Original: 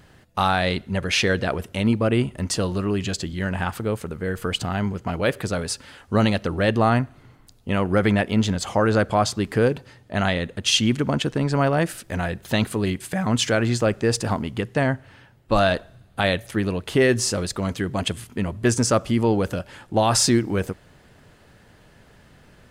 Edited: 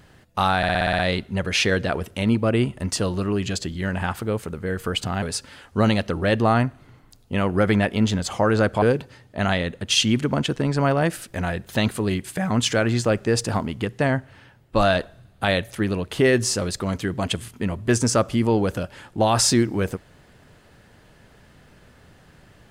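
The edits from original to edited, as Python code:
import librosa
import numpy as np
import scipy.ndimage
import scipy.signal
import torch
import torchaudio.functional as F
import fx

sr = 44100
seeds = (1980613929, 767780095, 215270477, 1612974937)

y = fx.edit(x, sr, fx.stutter(start_s=0.57, slice_s=0.06, count=8),
    fx.cut(start_s=4.8, length_s=0.78),
    fx.cut(start_s=9.18, length_s=0.4), tone=tone)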